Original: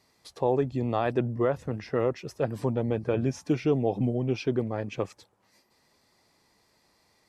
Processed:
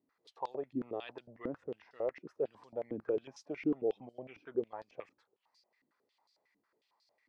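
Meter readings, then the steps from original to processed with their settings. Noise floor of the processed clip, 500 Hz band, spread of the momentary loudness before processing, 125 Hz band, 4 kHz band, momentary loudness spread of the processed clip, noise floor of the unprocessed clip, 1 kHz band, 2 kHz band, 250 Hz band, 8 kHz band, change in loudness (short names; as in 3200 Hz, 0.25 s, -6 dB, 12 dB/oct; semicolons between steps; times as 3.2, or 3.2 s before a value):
-83 dBFS, -10.0 dB, 6 LU, -25.5 dB, under -10 dB, 14 LU, -68 dBFS, -12.5 dB, -12.5 dB, -11.5 dB, under -15 dB, -11.0 dB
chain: stepped band-pass 11 Hz 280–4600 Hz; gain -1.5 dB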